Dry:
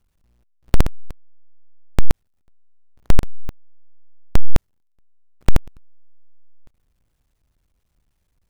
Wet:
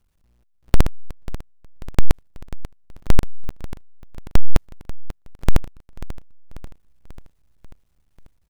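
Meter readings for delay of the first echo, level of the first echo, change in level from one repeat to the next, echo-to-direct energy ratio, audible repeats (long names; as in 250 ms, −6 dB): 540 ms, −15.0 dB, −5.0 dB, −13.5 dB, 4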